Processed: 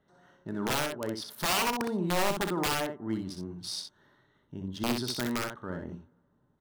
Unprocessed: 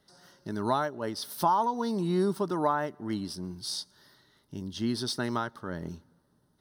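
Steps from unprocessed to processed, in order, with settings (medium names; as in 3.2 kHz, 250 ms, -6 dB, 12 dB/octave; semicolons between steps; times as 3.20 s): local Wiener filter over 9 samples; integer overflow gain 21.5 dB; early reflections 33 ms -16 dB, 63 ms -5.5 dB; trim -1.5 dB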